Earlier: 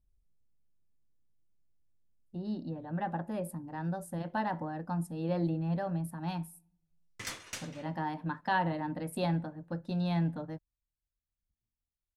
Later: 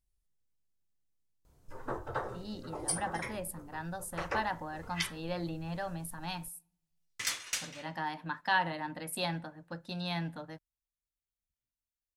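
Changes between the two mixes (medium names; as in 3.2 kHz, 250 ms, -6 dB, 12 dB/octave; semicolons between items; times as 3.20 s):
first sound: unmuted; master: add tilt shelf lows -8 dB, about 920 Hz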